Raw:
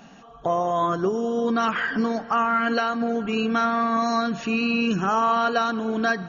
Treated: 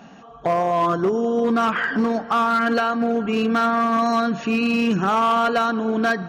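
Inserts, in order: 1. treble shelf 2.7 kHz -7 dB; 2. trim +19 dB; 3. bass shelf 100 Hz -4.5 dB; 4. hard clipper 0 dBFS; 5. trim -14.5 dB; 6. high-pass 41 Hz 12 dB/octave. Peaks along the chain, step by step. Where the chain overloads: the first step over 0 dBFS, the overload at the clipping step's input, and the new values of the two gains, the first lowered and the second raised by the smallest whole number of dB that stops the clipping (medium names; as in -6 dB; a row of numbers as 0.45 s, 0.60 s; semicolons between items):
-11.0 dBFS, +8.0 dBFS, +8.0 dBFS, 0.0 dBFS, -14.5 dBFS, -12.5 dBFS; step 2, 8.0 dB; step 2 +11 dB, step 5 -6.5 dB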